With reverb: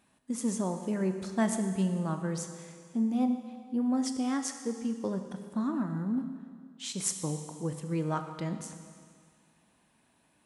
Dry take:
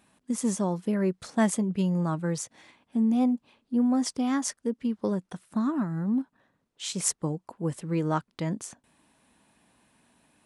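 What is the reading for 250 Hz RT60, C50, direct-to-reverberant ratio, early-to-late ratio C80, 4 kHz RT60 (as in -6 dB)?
1.9 s, 8.0 dB, 6.5 dB, 8.5 dB, 1.9 s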